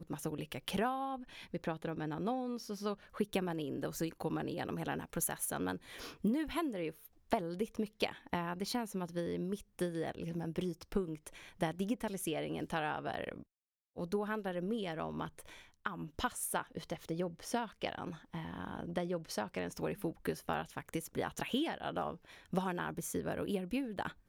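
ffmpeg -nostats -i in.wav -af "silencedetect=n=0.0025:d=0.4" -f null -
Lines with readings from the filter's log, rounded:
silence_start: 13.43
silence_end: 13.97 | silence_duration: 0.54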